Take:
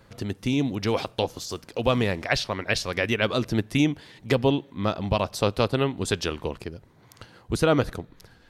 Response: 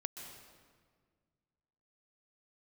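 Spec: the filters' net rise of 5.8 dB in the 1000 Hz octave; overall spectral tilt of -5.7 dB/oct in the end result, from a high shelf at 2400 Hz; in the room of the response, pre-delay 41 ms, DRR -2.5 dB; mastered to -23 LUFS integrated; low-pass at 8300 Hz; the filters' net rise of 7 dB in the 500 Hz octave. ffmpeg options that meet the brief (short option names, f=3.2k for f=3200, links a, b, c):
-filter_complex "[0:a]lowpass=8.3k,equalizer=f=500:t=o:g=7,equalizer=f=1k:t=o:g=6.5,highshelf=f=2.4k:g=-7.5,asplit=2[a][b];[1:a]atrim=start_sample=2205,adelay=41[c];[b][c]afir=irnorm=-1:irlink=0,volume=4dB[d];[a][d]amix=inputs=2:normalize=0,volume=-5.5dB"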